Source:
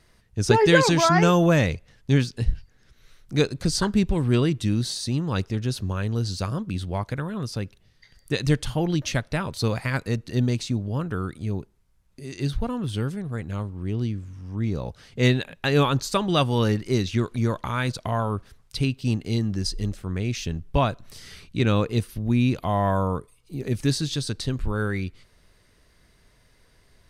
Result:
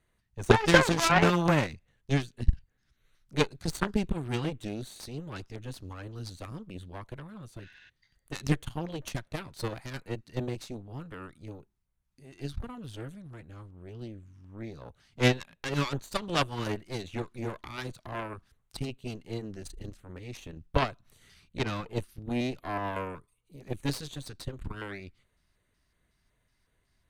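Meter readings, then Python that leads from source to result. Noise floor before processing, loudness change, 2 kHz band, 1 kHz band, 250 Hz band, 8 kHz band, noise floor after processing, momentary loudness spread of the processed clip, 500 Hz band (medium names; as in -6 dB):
-60 dBFS, -6.5 dB, -3.5 dB, -5.5 dB, -9.0 dB, -7.5 dB, -75 dBFS, 20 LU, -7.0 dB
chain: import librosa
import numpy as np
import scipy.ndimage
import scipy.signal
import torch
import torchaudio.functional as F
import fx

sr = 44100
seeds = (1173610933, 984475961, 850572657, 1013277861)

y = fx.filter_lfo_notch(x, sr, shape='square', hz=2.7, low_hz=480.0, high_hz=5100.0, q=1.6)
y = fx.spec_repair(y, sr, seeds[0], start_s=7.65, length_s=0.22, low_hz=1400.0, high_hz=7700.0, source='before')
y = fx.cheby_harmonics(y, sr, harmonics=(3, 5, 6, 7), levels_db=(-19, -34, -18, -22), full_scale_db=-3.5)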